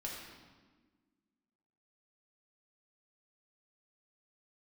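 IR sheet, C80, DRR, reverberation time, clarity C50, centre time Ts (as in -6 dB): 3.0 dB, -3.5 dB, 1.4 s, 1.5 dB, 70 ms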